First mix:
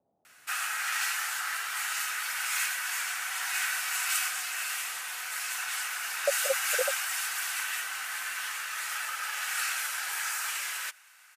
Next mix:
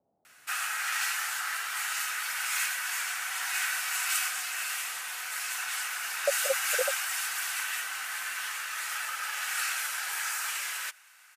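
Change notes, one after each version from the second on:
no change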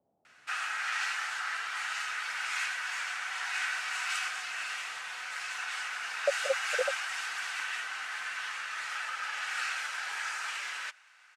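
master: add distance through air 110 m

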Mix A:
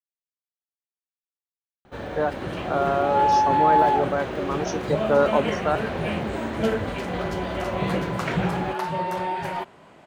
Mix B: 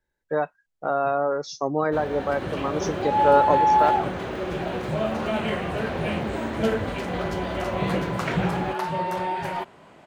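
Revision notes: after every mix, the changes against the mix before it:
speech: entry -1.85 s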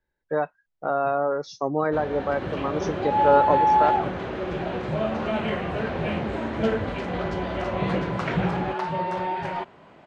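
master: add distance through air 110 m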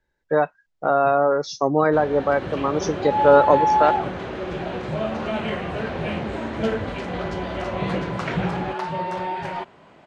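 speech +5.5 dB; master: add treble shelf 4.8 kHz +6.5 dB

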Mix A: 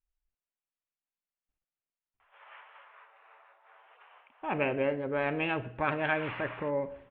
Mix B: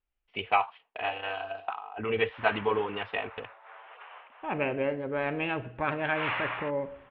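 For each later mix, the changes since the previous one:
first voice: unmuted; background +9.5 dB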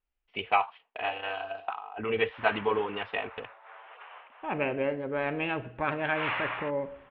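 master: add peaking EQ 100 Hz -3.5 dB 0.64 oct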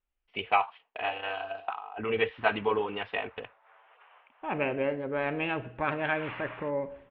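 background -10.0 dB

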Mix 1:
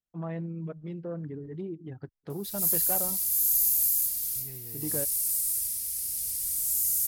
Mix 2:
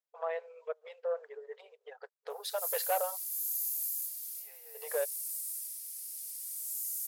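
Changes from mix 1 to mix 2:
first voice +5.0 dB; background -10.5 dB; master: add brick-wall FIR high-pass 430 Hz

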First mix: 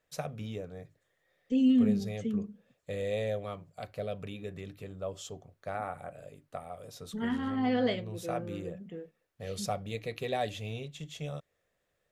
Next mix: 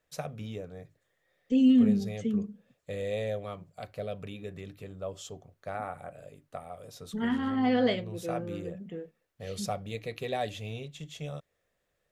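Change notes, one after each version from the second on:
second voice +3.0 dB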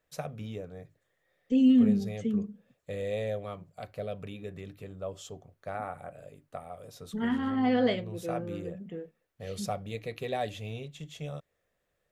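master: add peaking EQ 5.3 kHz -2.5 dB 2 oct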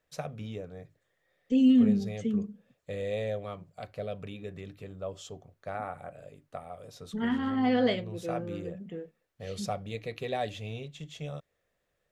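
first voice: add treble shelf 9.7 kHz -10 dB; master: add peaking EQ 5.3 kHz +2.5 dB 2 oct

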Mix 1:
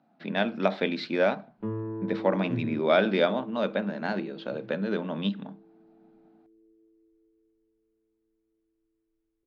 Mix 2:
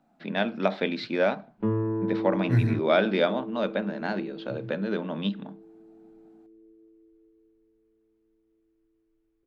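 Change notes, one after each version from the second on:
second voice: remove band-pass filter 290 Hz, Q 1.9; background +6.5 dB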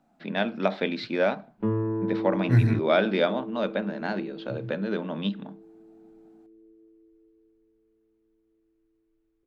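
second voice +3.0 dB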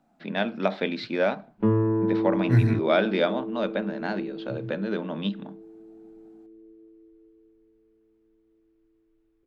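background +4.5 dB

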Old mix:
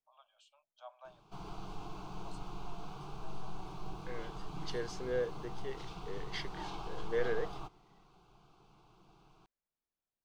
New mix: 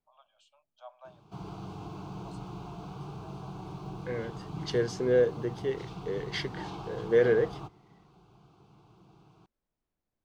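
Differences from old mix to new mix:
second voice +6.5 dB; background: add high-pass 57 Hz 24 dB/octave; master: add bass shelf 460 Hz +9.5 dB

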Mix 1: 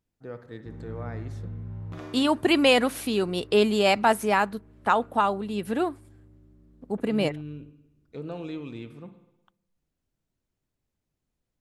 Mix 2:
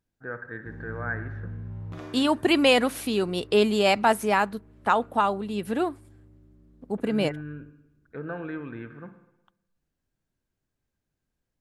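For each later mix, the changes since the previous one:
first voice: add resonant low-pass 1.6 kHz, resonance Q 15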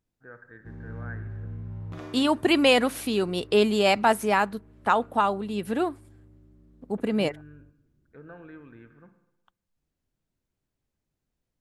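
first voice -11.0 dB

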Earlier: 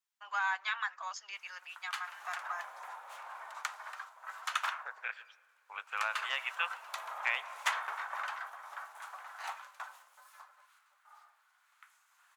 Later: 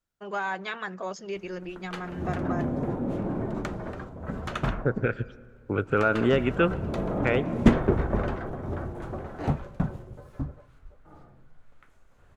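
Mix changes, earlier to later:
second voice: add peaking EQ 1.4 kHz +13 dB 0.29 oct; background: add low-pass 4 kHz 6 dB/octave; master: remove steep high-pass 920 Hz 36 dB/octave

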